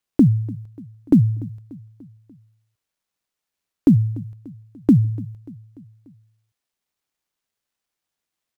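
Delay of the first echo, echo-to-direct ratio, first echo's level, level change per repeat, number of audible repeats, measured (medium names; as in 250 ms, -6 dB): 293 ms, -19.0 dB, -20.5 dB, -5.0 dB, 3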